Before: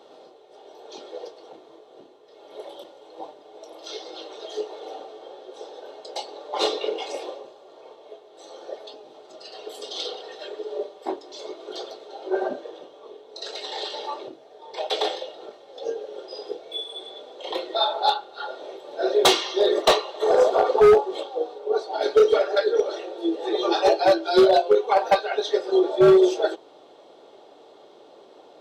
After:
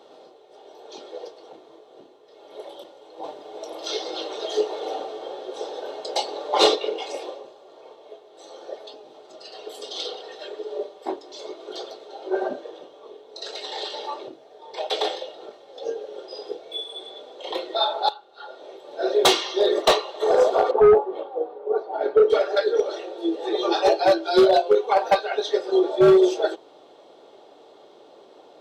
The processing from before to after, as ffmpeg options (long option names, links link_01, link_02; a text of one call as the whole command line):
ffmpeg -i in.wav -filter_complex "[0:a]asplit=3[link_01][link_02][link_03];[link_01]afade=type=out:start_time=3.23:duration=0.02[link_04];[link_02]acontrast=90,afade=type=in:start_time=3.23:duration=0.02,afade=type=out:start_time=6.74:duration=0.02[link_05];[link_03]afade=type=in:start_time=6.74:duration=0.02[link_06];[link_04][link_05][link_06]amix=inputs=3:normalize=0,asettb=1/sr,asplit=3[link_07][link_08][link_09];[link_07]atrim=end=20.714[link_10];[link_08]atrim=start=20.71:end=22.3,asetpts=PTS-STARTPTS,afade=type=in:duration=0.004:curve=qsin,afade=type=out:start_time=1.586:duration=0.004:curve=qsin,lowpass=1500[link_11];[link_09]atrim=start=22.296[link_12];[link_10][link_11]acrossfade=duration=0.004:curve1=hsin:curve2=qsin[link_13];[link_13][link_12]acrossfade=duration=0.004:curve1=qsin:curve2=hsin,asplit=2[link_14][link_15];[link_14]atrim=end=18.09,asetpts=PTS-STARTPTS,afade=type=out:start_time=18.086:duration=0.004:curve=hsin:silence=0.16788[link_16];[link_15]atrim=start=18.09,asetpts=PTS-STARTPTS,afade=type=in:duration=1.03:silence=0.16788[link_17];[link_16][link_17]concat=n=2:v=0:a=1" out.wav